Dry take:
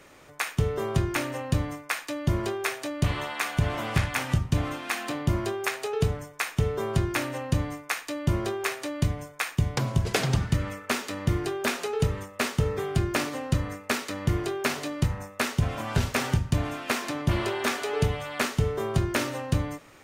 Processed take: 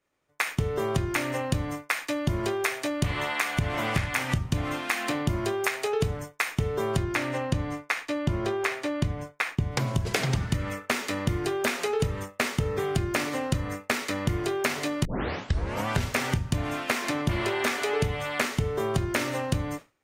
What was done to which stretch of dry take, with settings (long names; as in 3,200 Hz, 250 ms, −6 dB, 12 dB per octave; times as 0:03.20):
0:07.02–0:09.71: high-shelf EQ 9,300 Hz → 5,100 Hz −11.5 dB
0:15.05: tape start 0.82 s
whole clip: downward expander −35 dBFS; dynamic equaliser 2,100 Hz, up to +5 dB, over −45 dBFS, Q 3.7; downward compressor 4 to 1, threshold −28 dBFS; level +4.5 dB